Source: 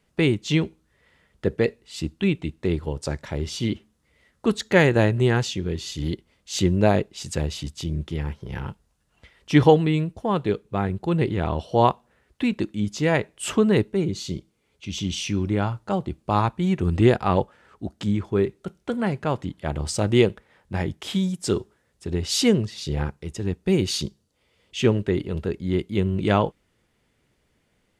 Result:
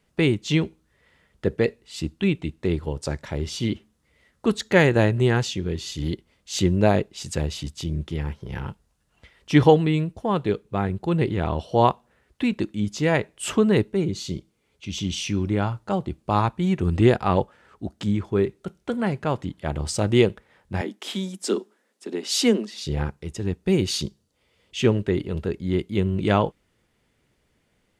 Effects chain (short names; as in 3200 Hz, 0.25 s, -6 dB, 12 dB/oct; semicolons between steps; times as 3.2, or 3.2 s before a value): 20.81–22.86 steep high-pass 200 Hz 72 dB/oct